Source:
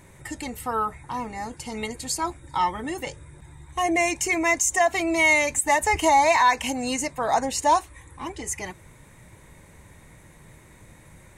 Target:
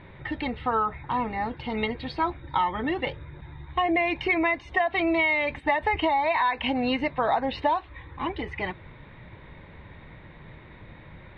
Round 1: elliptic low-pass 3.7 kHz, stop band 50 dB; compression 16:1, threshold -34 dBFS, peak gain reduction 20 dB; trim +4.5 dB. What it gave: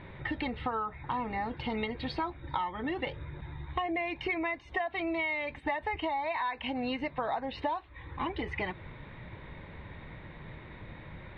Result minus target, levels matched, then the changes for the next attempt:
compression: peak gain reduction +9 dB
change: compression 16:1, threshold -24.5 dBFS, peak gain reduction 11 dB

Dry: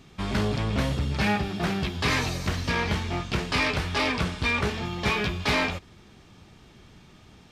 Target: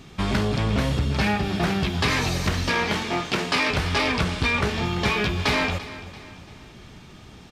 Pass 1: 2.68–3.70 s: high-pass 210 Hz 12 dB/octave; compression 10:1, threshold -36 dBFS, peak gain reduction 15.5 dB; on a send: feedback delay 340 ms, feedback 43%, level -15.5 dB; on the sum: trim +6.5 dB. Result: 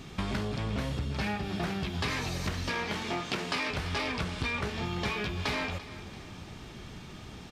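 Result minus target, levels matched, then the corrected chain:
compression: peak gain reduction +10 dB
2.68–3.70 s: high-pass 210 Hz 12 dB/octave; compression 10:1, threshold -25 dBFS, peak gain reduction 6 dB; on a send: feedback delay 340 ms, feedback 43%, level -15.5 dB; on the sum: trim +6.5 dB

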